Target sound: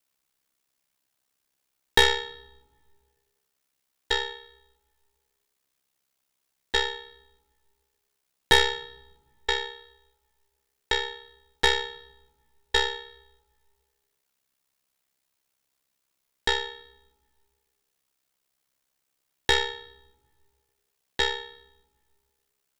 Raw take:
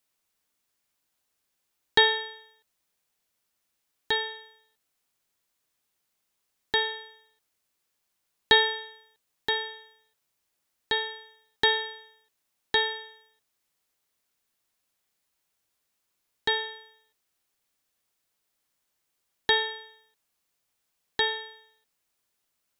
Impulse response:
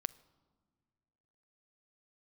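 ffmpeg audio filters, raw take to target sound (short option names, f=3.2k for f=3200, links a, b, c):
-filter_complex "[0:a]aeval=exprs='val(0)*sin(2*PI*33*n/s)':c=same,aeval=exprs='0.531*(cos(1*acos(clip(val(0)/0.531,-1,1)))-cos(1*PI/2))+0.0531*(cos(8*acos(clip(val(0)/0.531,-1,1)))-cos(8*PI/2))':c=same,asplit=2[a][b];[1:a]atrim=start_sample=2205[c];[b][c]afir=irnorm=-1:irlink=0,volume=10.5dB[d];[a][d]amix=inputs=2:normalize=0,volume=-8.5dB"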